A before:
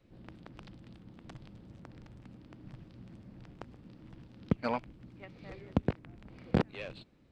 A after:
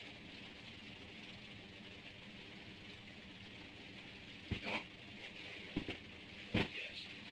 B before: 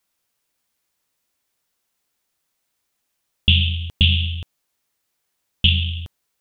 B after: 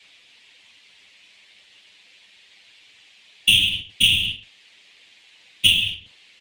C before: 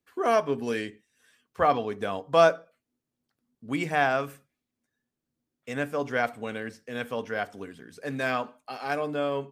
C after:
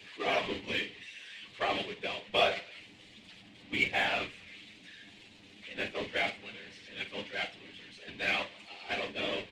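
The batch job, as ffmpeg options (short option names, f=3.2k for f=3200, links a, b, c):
-filter_complex "[0:a]aeval=exprs='val(0)+0.5*0.0398*sgn(val(0))':c=same,highpass=120,agate=range=-12dB:threshold=-26dB:ratio=16:detection=peak,bass=f=250:g=1,treble=f=4k:g=-13,acrossover=split=4100[a][b];[a]aexciter=amount=8.7:drive=7.5:freq=2.1k[c];[b]acrusher=bits=3:dc=4:mix=0:aa=0.000001[d];[c][d]amix=inputs=2:normalize=0,afftfilt=real='hypot(re,im)*cos(2*PI*random(0))':imag='hypot(re,im)*sin(2*PI*random(1))':win_size=512:overlap=0.75,aexciter=amount=5.6:drive=1.5:freq=7.5k,asplit=2[e][f];[f]aecho=0:1:10|48:0.596|0.299[g];[e][g]amix=inputs=2:normalize=0,volume=-6.5dB"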